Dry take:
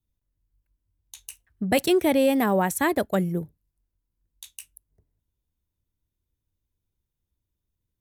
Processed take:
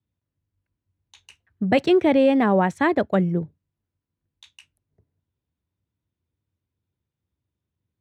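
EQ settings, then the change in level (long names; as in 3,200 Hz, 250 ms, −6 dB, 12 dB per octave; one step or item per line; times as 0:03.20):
high-pass filter 81 Hz 24 dB per octave
high-frequency loss of the air 140 metres
bass and treble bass +1 dB, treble −5 dB
+3.5 dB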